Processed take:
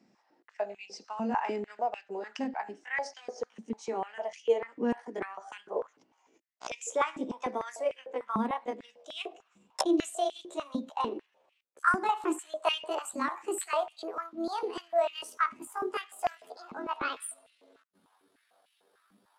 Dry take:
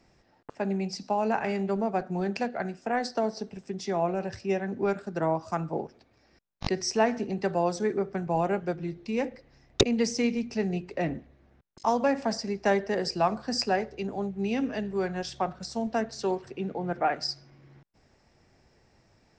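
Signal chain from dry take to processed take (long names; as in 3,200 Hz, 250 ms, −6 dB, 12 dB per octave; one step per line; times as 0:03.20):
pitch glide at a constant tempo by +12 semitones starting unshifted
high-pass on a step sequencer 6.7 Hz 220–2,700 Hz
level −7 dB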